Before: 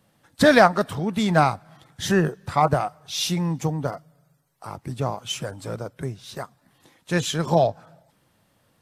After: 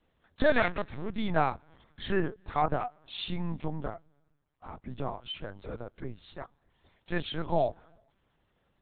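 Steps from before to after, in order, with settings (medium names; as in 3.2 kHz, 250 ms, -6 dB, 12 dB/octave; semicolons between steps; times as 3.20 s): 0.57–1.18 s: comb filter that takes the minimum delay 0.5 ms; LPC vocoder at 8 kHz pitch kept; trim -8 dB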